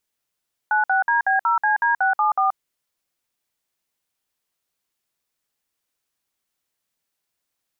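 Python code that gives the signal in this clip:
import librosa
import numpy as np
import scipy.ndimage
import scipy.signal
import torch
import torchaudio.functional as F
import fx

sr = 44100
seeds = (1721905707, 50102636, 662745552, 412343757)

y = fx.dtmf(sr, digits='96DB0CD674', tone_ms=129, gap_ms=56, level_db=-18.5)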